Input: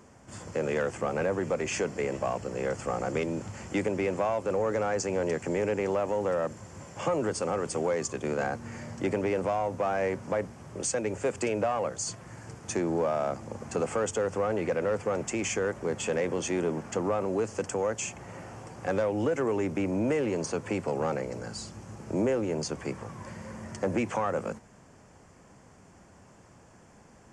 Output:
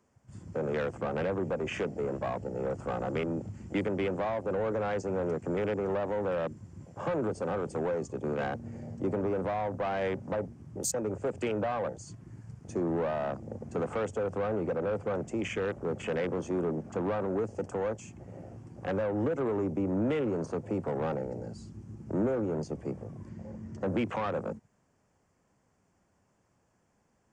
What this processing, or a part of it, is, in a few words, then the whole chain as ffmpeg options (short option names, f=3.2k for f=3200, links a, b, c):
one-band saturation: -filter_complex "[0:a]afwtdn=0.0158,asettb=1/sr,asplit=3[a][b][c];[a]atrim=end=23.294[d];[b]atrim=start=23.29:end=23.81,asetpts=PTS-STARTPTS,afade=t=in:d=0.004:c=qsin,afade=t=out:st=0.516:d=0.004:c=qsin,lowpass=f=7.9k:w=0.5412,lowpass=f=7.9k:w=1.3066[e];[c]atrim=start=23.806[f];[d][e]acrossfade=d=0.004:c1=hsin:c2=qsin[g];[g][f]acrossfade=d=0.004:c1=qsin:c2=hsin,acrossover=split=260|2800[h][i][j];[i]asoftclip=type=tanh:threshold=-27dB[k];[h][k][j]amix=inputs=3:normalize=0"